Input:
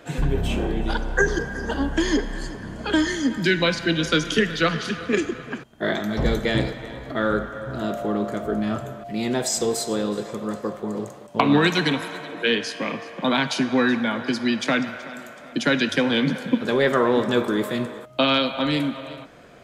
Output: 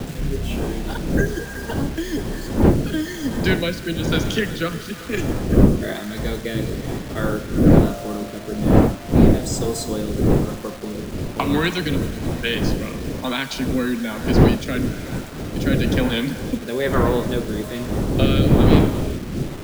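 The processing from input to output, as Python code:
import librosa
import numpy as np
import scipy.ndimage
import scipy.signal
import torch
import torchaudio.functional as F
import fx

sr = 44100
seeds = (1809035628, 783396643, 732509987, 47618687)

y = fx.dmg_wind(x, sr, seeds[0], corner_hz=290.0, level_db=-18.0)
y = fx.rotary(y, sr, hz=1.1)
y = fx.quant_dither(y, sr, seeds[1], bits=6, dither='none')
y = y * librosa.db_to_amplitude(-1.0)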